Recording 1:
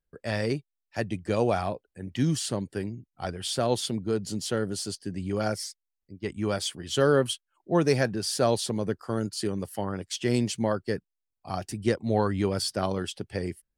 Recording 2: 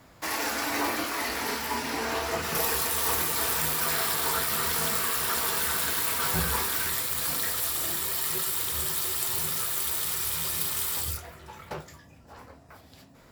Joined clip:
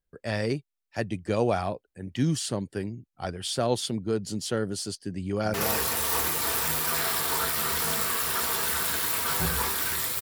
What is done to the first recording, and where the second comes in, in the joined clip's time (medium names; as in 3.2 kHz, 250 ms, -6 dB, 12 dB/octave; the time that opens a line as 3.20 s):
recording 1
5.20–5.54 s: echo throw 240 ms, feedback 35%, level -7 dB
5.54 s: go over to recording 2 from 2.48 s